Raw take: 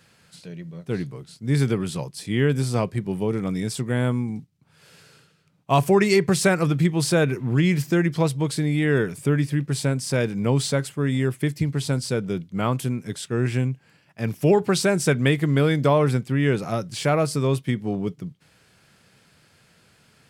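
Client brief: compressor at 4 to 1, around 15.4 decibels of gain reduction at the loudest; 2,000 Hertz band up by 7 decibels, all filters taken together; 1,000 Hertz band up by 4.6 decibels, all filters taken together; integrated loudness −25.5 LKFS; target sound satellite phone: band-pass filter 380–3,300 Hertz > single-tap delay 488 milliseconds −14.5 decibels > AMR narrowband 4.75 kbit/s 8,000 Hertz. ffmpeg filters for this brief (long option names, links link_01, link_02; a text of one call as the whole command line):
ffmpeg -i in.wav -af "equalizer=frequency=1000:width_type=o:gain=4,equalizer=frequency=2000:width_type=o:gain=8,acompressor=threshold=-31dB:ratio=4,highpass=380,lowpass=3300,aecho=1:1:488:0.188,volume=13.5dB" -ar 8000 -c:a libopencore_amrnb -b:a 4750 out.amr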